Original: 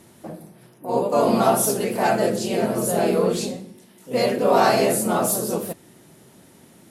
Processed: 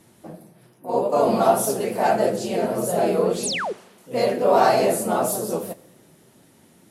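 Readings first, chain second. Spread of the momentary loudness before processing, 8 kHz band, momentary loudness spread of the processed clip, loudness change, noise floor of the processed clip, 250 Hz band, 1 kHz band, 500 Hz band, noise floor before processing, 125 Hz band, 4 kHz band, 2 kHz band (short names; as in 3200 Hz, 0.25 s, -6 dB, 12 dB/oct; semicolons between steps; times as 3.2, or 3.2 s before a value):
18 LU, -3.0 dB, 13 LU, -0.5 dB, -55 dBFS, -3.0 dB, +0.5 dB, +0.5 dB, -51 dBFS, -3.0 dB, -1.0 dB, -1.5 dB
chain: dynamic EQ 660 Hz, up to +5 dB, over -32 dBFS, Q 0.98; flange 1.7 Hz, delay 5.9 ms, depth 6.8 ms, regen -38%; painted sound fall, 3.43–3.73, 340–12000 Hz -26 dBFS; Schroeder reverb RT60 1.3 s, combs from 26 ms, DRR 20 dB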